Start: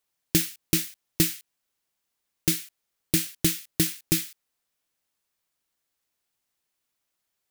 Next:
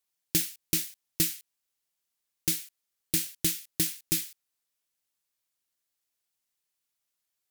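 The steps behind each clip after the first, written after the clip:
parametric band 14,000 Hz +7 dB 2.8 octaves
level −8.5 dB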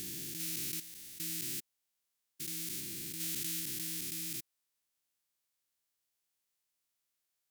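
spectrum averaged block by block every 400 ms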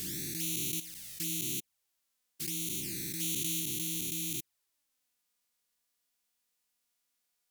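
flanger swept by the level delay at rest 4.2 ms, full sweep at −36.5 dBFS
level +7 dB

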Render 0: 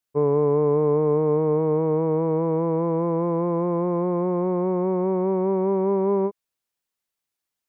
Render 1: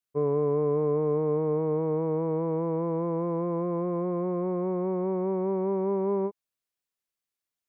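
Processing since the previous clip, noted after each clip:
notch filter 880 Hz, Q 12
level −5.5 dB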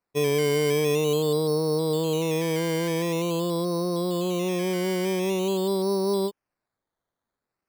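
sample-and-hold swept by an LFO 13×, swing 60% 0.46 Hz
level +2.5 dB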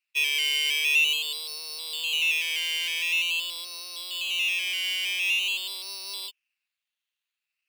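high-pass with resonance 2,700 Hz, resonance Q 10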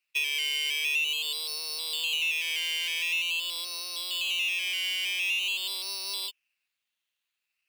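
downward compressor 3 to 1, threshold −30 dBFS, peak gain reduction 9 dB
level +2.5 dB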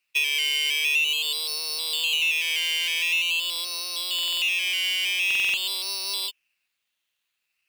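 buffer that repeats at 0:04.14/0:05.26, samples 2,048, times 5
level +5 dB

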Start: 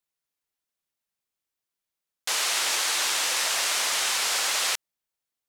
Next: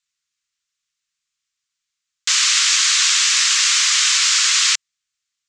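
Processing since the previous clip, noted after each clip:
drawn EQ curve 130 Hz 0 dB, 310 Hz −12 dB, 720 Hz −28 dB, 1,100 Hz +4 dB, 2,200 Hz +9 dB, 7,300 Hz +13 dB, 14,000 Hz −26 dB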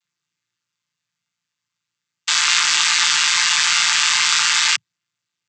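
channel vocoder with a chord as carrier major triad, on A#2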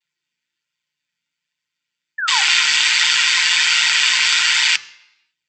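flanger 1.3 Hz, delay 0.9 ms, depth 3.8 ms, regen +49%
sound drawn into the spectrogram fall, 0:02.18–0:02.42, 750–1,800 Hz −25 dBFS
convolution reverb RT60 0.85 s, pre-delay 3 ms, DRR 14.5 dB
level −3.5 dB

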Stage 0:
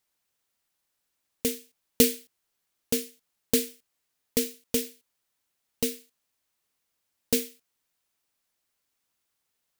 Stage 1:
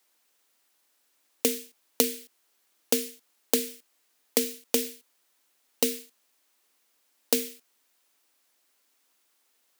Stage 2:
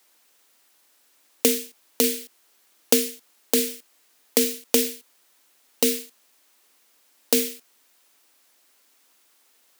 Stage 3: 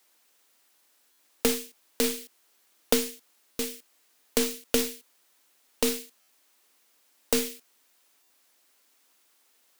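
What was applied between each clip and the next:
Butterworth high-pass 230 Hz; downward compressor 16 to 1, threshold −29 dBFS, peak gain reduction 15.5 dB; level +9 dB
brickwall limiter −10 dBFS, peak gain reduction 8.5 dB; level +8.5 dB
stylus tracing distortion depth 0.18 ms; buffer that repeats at 0:01.11/0:03.51/0:06.20/0:08.22, samples 512, times 6; level −4 dB

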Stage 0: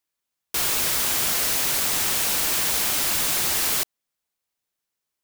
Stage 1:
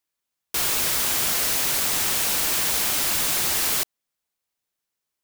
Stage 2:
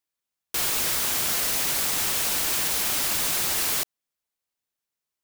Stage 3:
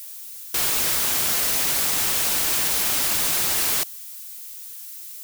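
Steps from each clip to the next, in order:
no processing that can be heard
brickwall limiter −19.5 dBFS, peak gain reduction 9 dB; leveller curve on the samples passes 2
spike at every zero crossing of −35.5 dBFS; level +2 dB

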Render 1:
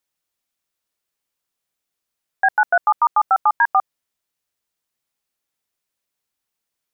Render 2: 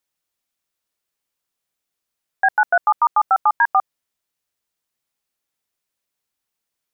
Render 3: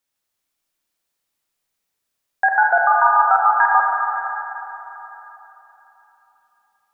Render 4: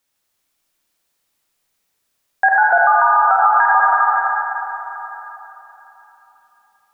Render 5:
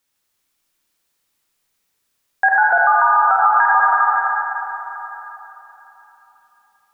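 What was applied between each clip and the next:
no processing that can be heard
four-comb reverb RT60 3.6 s, combs from 28 ms, DRR −1.5 dB
brickwall limiter −12 dBFS, peak gain reduction 9.5 dB; level +7 dB
parametric band 660 Hz −4 dB 0.52 octaves

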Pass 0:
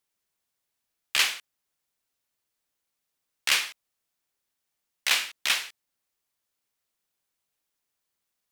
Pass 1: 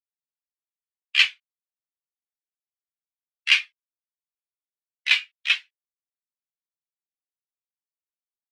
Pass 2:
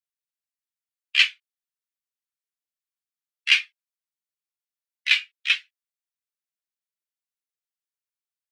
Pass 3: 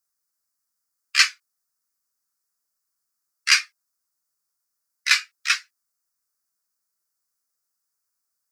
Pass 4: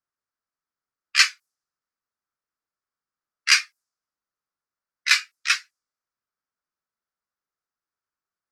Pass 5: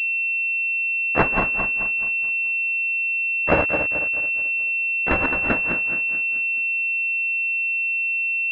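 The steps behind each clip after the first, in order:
every bin expanded away from the loudest bin 2.5 to 1; level +6 dB
high-pass filter 1,200 Hz 24 dB per octave
drawn EQ curve 840 Hz 0 dB, 1,300 Hz +8 dB, 3,200 Hz −15 dB, 4,900 Hz +8 dB; level +6.5 dB
low-pass that shuts in the quiet parts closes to 2,500 Hz, open at −23 dBFS
feedback delay that plays each chunk backwards 108 ms, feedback 66%, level −5 dB; switching amplifier with a slow clock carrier 2,700 Hz; level +3 dB

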